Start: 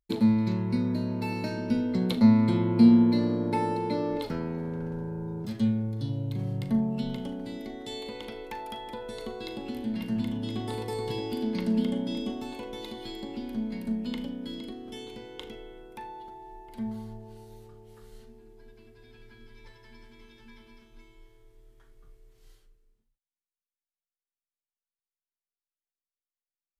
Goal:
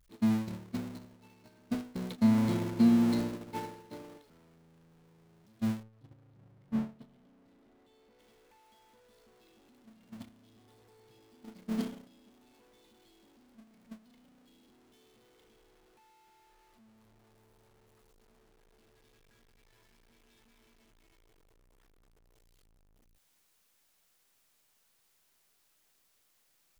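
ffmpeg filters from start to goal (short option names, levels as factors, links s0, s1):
-filter_complex "[0:a]aeval=exprs='val(0)+0.5*0.0668*sgn(val(0))':c=same,agate=range=0.0355:threshold=0.0891:ratio=16:detection=peak,asettb=1/sr,asplit=3[s0][s1][s2];[s0]atrim=end=5.834[s3];[s1]atrim=start=5.83:end=8.19,asetpts=PTS-STARTPTS,afade=t=in:d=0.004:c=qsin,afade=t=out:st=2.356:d=0.004:c=qsin,highshelf=f=3200:g=-12[s4];[s2]atrim=start=8.186[s5];[s3][s4]acrossfade=d=0.004:c1=hsin:c2=qsin[s6];[s6][s5]acrossfade=d=0.004:c1=qsin:c2=hsin,volume=0.422"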